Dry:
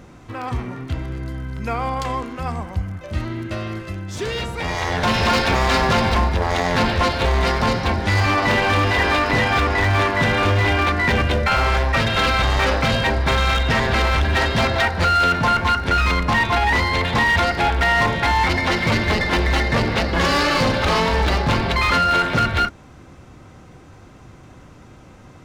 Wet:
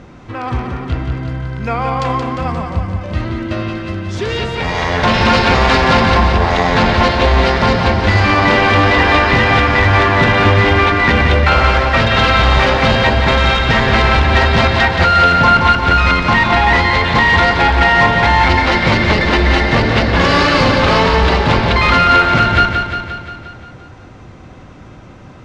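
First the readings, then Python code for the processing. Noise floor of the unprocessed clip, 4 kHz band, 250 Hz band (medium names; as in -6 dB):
-44 dBFS, +6.0 dB, +7.0 dB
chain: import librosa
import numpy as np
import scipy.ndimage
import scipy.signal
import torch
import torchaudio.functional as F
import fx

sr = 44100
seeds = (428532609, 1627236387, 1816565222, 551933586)

p1 = scipy.signal.sosfilt(scipy.signal.butter(2, 5000.0, 'lowpass', fs=sr, output='sos'), x)
p2 = p1 + fx.echo_feedback(p1, sr, ms=176, feedback_pct=60, wet_db=-6.0, dry=0)
y = p2 * librosa.db_to_amplitude(5.5)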